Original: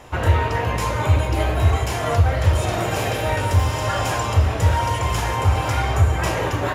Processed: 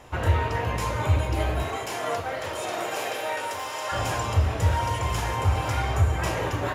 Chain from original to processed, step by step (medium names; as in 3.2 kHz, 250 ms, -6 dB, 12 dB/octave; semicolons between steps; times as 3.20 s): 1.62–3.91 s: high-pass 230 Hz -> 580 Hz 12 dB/octave; trim -5 dB